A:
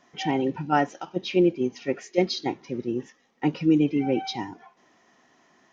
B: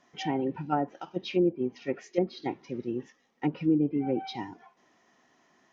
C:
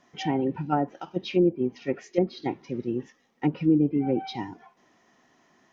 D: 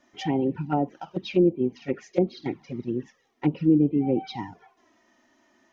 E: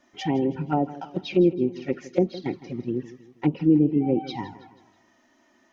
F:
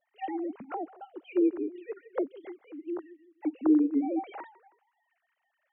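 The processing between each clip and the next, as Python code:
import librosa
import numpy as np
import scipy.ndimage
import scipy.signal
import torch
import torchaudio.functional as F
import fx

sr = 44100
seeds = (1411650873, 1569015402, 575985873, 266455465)

y1 = fx.env_lowpass_down(x, sr, base_hz=770.0, full_db=-17.5)
y1 = y1 * 10.0 ** (-4.5 / 20.0)
y2 = fx.low_shelf(y1, sr, hz=210.0, db=5.0)
y2 = y2 * 10.0 ** (2.0 / 20.0)
y3 = fx.env_flanger(y2, sr, rest_ms=3.4, full_db=-21.5)
y3 = y3 * 10.0 ** (2.0 / 20.0)
y4 = fx.echo_feedback(y3, sr, ms=161, feedback_pct=45, wet_db=-16.5)
y4 = y4 * 10.0 ** (1.0 / 20.0)
y5 = fx.sine_speech(y4, sr)
y5 = y5 * 10.0 ** (-6.5 / 20.0)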